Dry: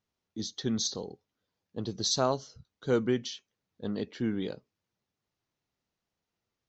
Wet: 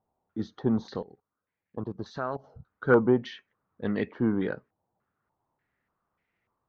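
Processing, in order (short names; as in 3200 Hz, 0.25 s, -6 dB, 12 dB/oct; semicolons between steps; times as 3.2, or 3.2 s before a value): 0.99–2.44 level quantiser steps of 19 dB; stepped low-pass 3.4 Hz 800–2100 Hz; gain +4.5 dB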